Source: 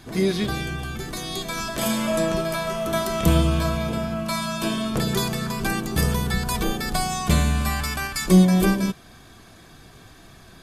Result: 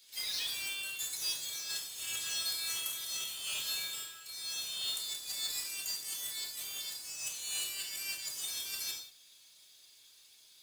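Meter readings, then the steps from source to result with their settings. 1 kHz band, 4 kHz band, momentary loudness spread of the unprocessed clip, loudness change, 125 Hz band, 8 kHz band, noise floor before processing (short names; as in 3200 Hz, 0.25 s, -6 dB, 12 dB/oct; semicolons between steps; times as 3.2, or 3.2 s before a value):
-27.5 dB, -4.0 dB, 10 LU, -12.5 dB, under -40 dB, -4.0 dB, -48 dBFS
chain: spectral noise reduction 13 dB; inverse Chebyshev high-pass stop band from 520 Hz, stop band 80 dB; negative-ratio compressor -43 dBFS, ratio -1; modulation noise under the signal 10 dB; non-linear reverb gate 0.21 s falling, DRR -0.5 dB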